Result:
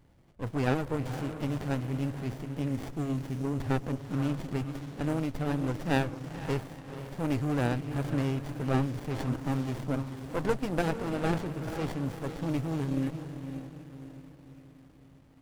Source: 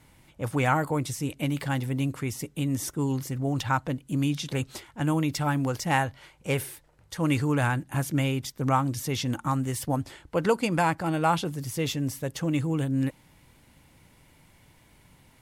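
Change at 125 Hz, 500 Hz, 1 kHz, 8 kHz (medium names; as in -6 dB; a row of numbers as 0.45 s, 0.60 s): -3.5 dB, -3.0 dB, -8.5 dB, -13.5 dB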